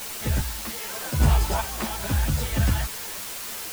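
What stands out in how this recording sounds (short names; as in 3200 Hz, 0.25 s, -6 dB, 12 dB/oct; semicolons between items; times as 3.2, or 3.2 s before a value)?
random-step tremolo 2.5 Hz, depth 80%; a quantiser's noise floor 6-bit, dither triangular; a shimmering, thickened sound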